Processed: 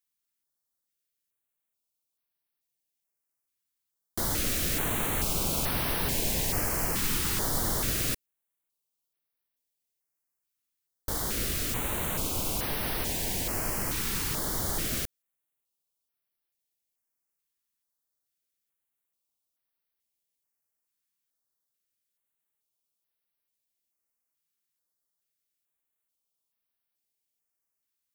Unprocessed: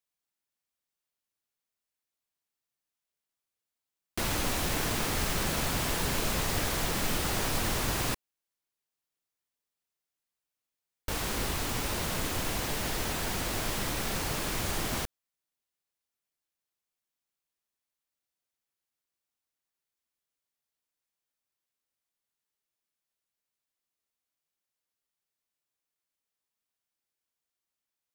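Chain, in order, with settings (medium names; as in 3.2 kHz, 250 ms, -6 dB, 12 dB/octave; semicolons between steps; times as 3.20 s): treble shelf 8.8 kHz +8 dB; step-sequenced notch 2.3 Hz 640–7200 Hz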